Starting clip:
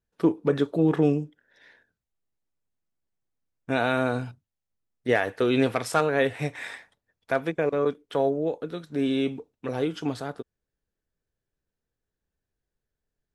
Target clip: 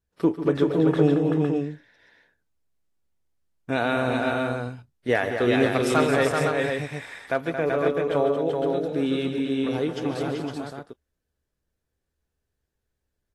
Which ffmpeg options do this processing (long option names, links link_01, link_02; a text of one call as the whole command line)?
ffmpeg -i in.wav -filter_complex "[0:a]equalizer=frequency=71:width_type=o:width=0.33:gain=12,asplit=2[link_01][link_02];[link_02]aecho=0:1:141|148|225|383|510:0.178|0.224|0.398|0.631|0.531[link_03];[link_01][link_03]amix=inputs=2:normalize=0" -ar 32000 -c:a aac -b:a 48k out.aac